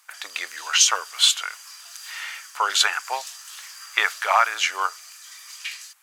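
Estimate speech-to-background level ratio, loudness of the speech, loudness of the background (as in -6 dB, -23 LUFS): 17.5 dB, -21.0 LUFS, -38.5 LUFS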